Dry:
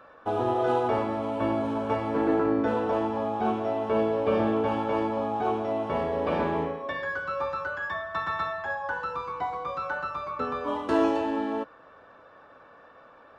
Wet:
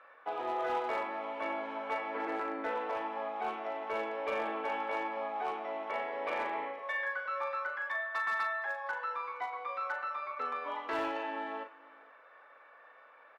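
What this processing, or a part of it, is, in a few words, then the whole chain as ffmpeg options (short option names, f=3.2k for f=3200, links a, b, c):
megaphone: -filter_complex "[0:a]asettb=1/sr,asplit=3[a][b][c];[a]atrim=end=6.784[d];[b]atrim=start=6.78:end=7.26,asetpts=PTS-STARTPTS,afade=t=in:d=0.004:c=qsin,afade=t=out:st=0.476:d=0.004:c=qsin,highpass=f=470:w=0.5412,highpass=f=470:w=1.3066[e];[c]atrim=start=7.256[f];[d][e]acrossfade=d=0.004:c1=hsin:c2=qsin[g];[g][f]acrossfade=d=0.004:c1=qsin:c2=hsin,highpass=560,lowpass=3.7k,equalizer=f=2.1k:t=o:w=0.46:g=11,asoftclip=type=hard:threshold=-21.5dB,lowshelf=f=200:g=-4.5,asplit=2[h][i];[i]adelay=40,volume=-8dB[j];[h][j]amix=inputs=2:normalize=0,aecho=1:1:463:0.0794,volume=-6dB"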